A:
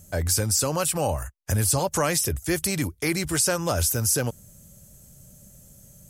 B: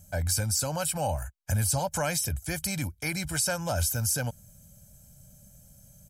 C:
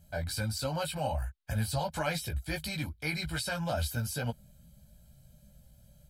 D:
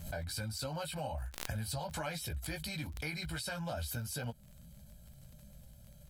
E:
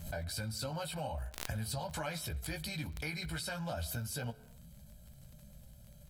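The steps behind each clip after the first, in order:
comb 1.3 ms, depth 71%; trim -6.5 dB
chorus voices 6, 0.97 Hz, delay 16 ms, depth 3 ms; resonant high shelf 5 kHz -7 dB, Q 3
compression 2.5:1, threshold -42 dBFS, peak gain reduction 10.5 dB; crackle 49 per s -50 dBFS; swell ahead of each attack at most 64 dB/s; trim +1.5 dB
reverberation, pre-delay 4 ms, DRR 16.5 dB

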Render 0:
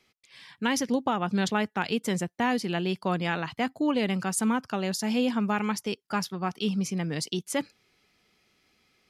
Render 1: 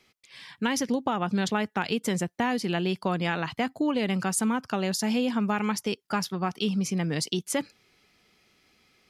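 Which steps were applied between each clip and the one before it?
compression 3:1, threshold -27 dBFS, peak gain reduction 5.5 dB; trim +3.5 dB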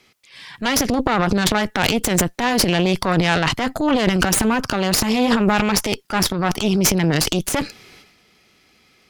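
transient shaper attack -5 dB, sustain +11 dB; Chebyshev shaper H 6 -12 dB, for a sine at -10 dBFS; trim +7.5 dB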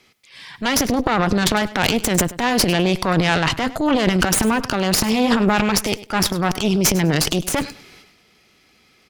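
feedback delay 101 ms, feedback 20%, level -17 dB

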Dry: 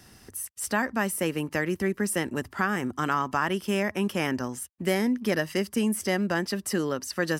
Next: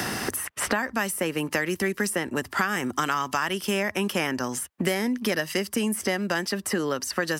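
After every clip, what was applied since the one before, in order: in parallel at -1 dB: compression, threshold -32 dBFS, peak gain reduction 12 dB; on the sum: bass shelf 420 Hz -6.5 dB; three bands compressed up and down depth 100%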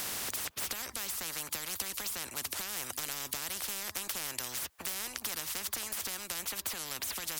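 tone controls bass -1 dB, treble +7 dB; saturation -13 dBFS, distortion -22 dB; spectrum-flattening compressor 10:1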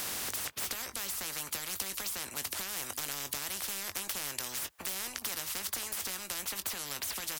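doubling 21 ms -11 dB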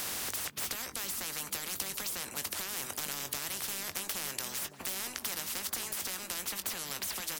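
repeats whose band climbs or falls 459 ms, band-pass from 190 Hz, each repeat 0.7 oct, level -3 dB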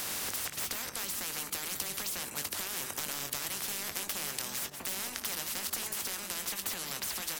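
chunks repeated in reverse 100 ms, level -7 dB

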